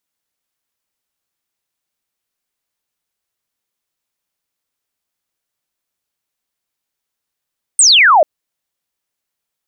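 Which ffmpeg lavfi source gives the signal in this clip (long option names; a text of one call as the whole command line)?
ffmpeg -f lavfi -i "aevalsrc='0.562*clip(t/0.002,0,1)*clip((0.44-t)/0.002,0,1)*sin(2*PI*9000*0.44/log(570/9000)*(exp(log(570/9000)*t/0.44)-1))':duration=0.44:sample_rate=44100" out.wav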